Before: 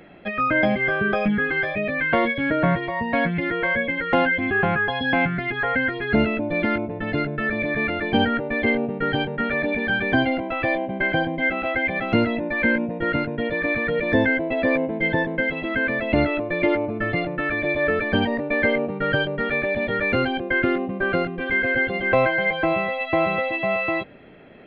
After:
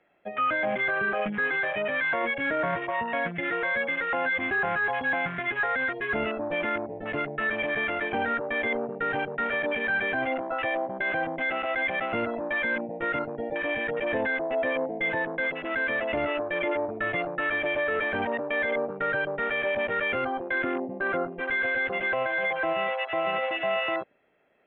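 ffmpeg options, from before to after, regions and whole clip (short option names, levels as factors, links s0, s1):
-filter_complex "[0:a]asettb=1/sr,asplit=3[s0][s1][s2];[s0]atrim=end=13.414[s3];[s1]atrim=start=13.41:end=14.63,asetpts=PTS-STARTPTS,afade=t=in:d=0.004:c=qsin,afade=t=out:st=1.216:d=0.004:c=qsin,highshelf=f=2500:g=-8.5,asplit=2[s4][s5];[s5]adelay=14,volume=0.355[s6];[s4][s6]amix=inputs=2:normalize=0,atrim=end_sample=53802[s7];[s2]atrim=start=14.626[s8];[s3][s7]acrossfade=d=0.004:c1=hsin:c2=qsin[s9];[s9][s8]acrossfade=d=0.004:c1=qsin:c2=hsin,asettb=1/sr,asplit=3[s10][s11][s12];[s10]atrim=end=20.544[s13];[s11]atrim=start=20.54:end=21.32,asetpts=PTS-STARTPTS,afade=t=in:d=0.004:c=qsin,afade=t=out:st=0.776:d=0.004:c=qsin,lowpass=2100,equalizer=f=280:t=o:w=0.24:g=8[s14];[s12]atrim=start=21.316[s15];[s13][s14]acrossfade=d=0.004:c1=hsin:c2=qsin[s16];[s16][s15]acrossfade=d=0.004:c1=qsin:c2=hsin,afwtdn=0.0447,acrossover=split=450 3600:gain=0.224 1 0.0891[s17][s18][s19];[s17][s18][s19]amix=inputs=3:normalize=0,alimiter=limit=0.106:level=0:latency=1:release=11"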